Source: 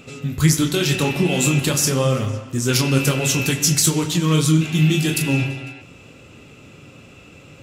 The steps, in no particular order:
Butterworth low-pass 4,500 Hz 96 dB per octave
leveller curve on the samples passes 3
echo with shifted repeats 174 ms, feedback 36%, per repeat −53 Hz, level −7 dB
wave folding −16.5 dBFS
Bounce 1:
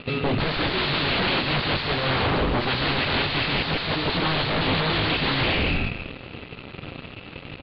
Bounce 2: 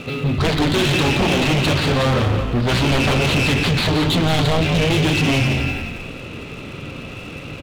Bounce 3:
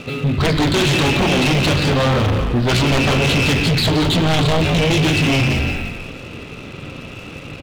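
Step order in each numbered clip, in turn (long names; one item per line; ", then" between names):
echo with shifted repeats, then leveller curve on the samples, then wave folding, then Butterworth low-pass
wave folding, then Butterworth low-pass, then leveller curve on the samples, then echo with shifted repeats
Butterworth low-pass, then wave folding, then echo with shifted repeats, then leveller curve on the samples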